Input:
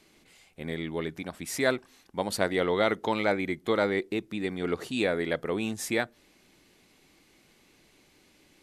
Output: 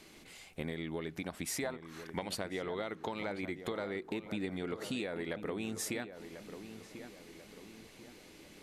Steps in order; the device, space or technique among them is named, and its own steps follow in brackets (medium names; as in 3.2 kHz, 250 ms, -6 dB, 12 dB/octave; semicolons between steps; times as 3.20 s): 1.62–2.34 s: peaking EQ 760 Hz -> 2.6 kHz +14 dB 0.88 oct; serial compression, leveller first (compression 2.5:1, threshold -30 dBFS, peak gain reduction 11 dB; compression 6:1, threshold -40 dBFS, peak gain reduction 15.5 dB); filtered feedback delay 1042 ms, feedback 48%, low-pass 1.7 kHz, level -10 dB; trim +4.5 dB